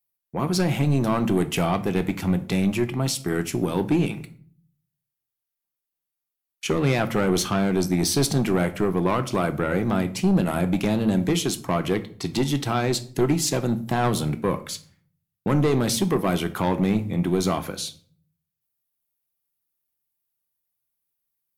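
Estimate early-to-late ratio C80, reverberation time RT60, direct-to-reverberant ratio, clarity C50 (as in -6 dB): 20.0 dB, 0.50 s, 9.0 dB, 15.5 dB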